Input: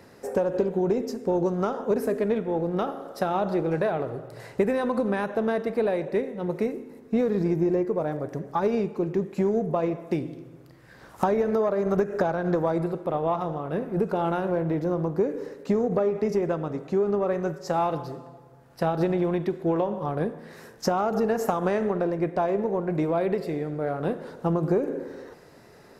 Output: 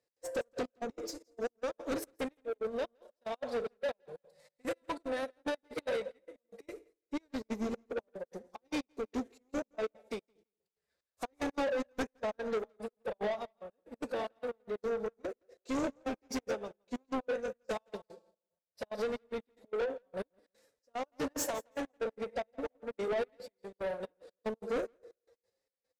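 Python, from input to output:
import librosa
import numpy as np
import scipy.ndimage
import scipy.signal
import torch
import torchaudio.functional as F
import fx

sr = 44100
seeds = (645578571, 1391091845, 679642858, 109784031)

y = fx.graphic_eq_10(x, sr, hz=(125, 250, 500, 1000, 4000, 8000), db=(-12, -9, 7, -7, 6, 8))
y = fx.pitch_keep_formants(y, sr, semitones=4.5)
y = fx.step_gate(y, sr, bpm=184, pattern='x.xxx..x..', floor_db=-24.0, edge_ms=4.5)
y = 10.0 ** (-28.5 / 20.0) * np.tanh(y / 10.0 ** (-28.5 / 20.0))
y = fx.echo_feedback(y, sr, ms=167, feedback_pct=26, wet_db=-15.0)
y = fx.upward_expand(y, sr, threshold_db=-52.0, expansion=2.5)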